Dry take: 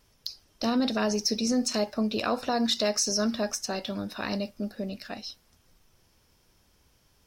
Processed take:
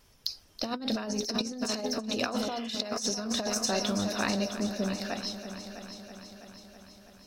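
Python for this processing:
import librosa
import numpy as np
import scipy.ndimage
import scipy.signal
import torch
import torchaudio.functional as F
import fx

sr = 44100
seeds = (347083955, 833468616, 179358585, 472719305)

y = fx.hum_notches(x, sr, base_hz=60, count=10)
y = fx.echo_heads(y, sr, ms=327, heads='first and second', feedback_pct=60, wet_db=-14)
y = fx.over_compress(y, sr, threshold_db=-30.0, ratio=-0.5)
y = fx.spec_repair(y, sr, seeds[0], start_s=2.39, length_s=0.33, low_hz=1600.0, high_hz=3500.0, source='after')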